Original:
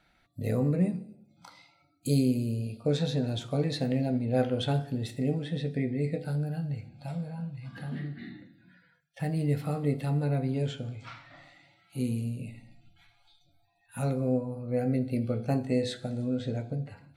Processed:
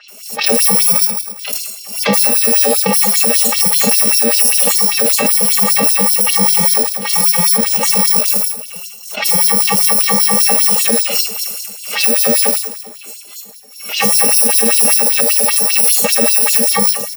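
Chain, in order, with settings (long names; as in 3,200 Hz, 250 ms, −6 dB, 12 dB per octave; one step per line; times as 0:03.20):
samples in bit-reversed order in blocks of 128 samples
high-pass filter 160 Hz 24 dB per octave
parametric band 1,400 Hz −10 dB 0.72 octaves
comb filter 4.9 ms, depth 92%
downward compressor, threshold −31 dBFS, peak gain reduction 14 dB
multiband delay without the direct sound lows, highs 80 ms, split 3,800 Hz
convolution reverb RT60 1.0 s, pre-delay 7 ms, DRR 7 dB
auto-filter high-pass sine 5.1 Hz 290–4,600 Hz
boost into a limiter +30 dB
background raised ahead of every attack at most 85 dB per second
level −1.5 dB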